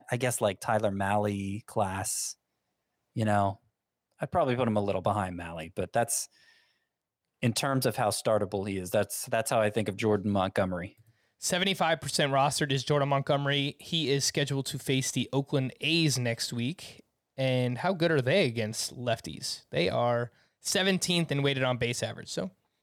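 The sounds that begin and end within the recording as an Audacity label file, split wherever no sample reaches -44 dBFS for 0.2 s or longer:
3.160000	3.550000	sound
4.210000	6.250000	sound
7.420000	10.880000	sound
11.420000	17.000000	sound
17.380000	20.270000	sound
20.650000	22.490000	sound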